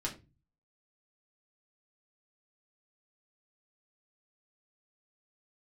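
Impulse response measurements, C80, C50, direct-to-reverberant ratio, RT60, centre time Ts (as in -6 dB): 18.0 dB, 13.0 dB, -2.5 dB, 0.30 s, 14 ms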